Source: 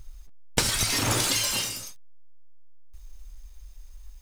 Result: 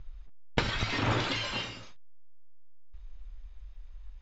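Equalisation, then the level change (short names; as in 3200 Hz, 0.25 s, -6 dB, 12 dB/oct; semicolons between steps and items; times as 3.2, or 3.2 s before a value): Chebyshev low-pass 7500 Hz, order 10; air absorption 480 m; high shelf 2900 Hz +10.5 dB; 0.0 dB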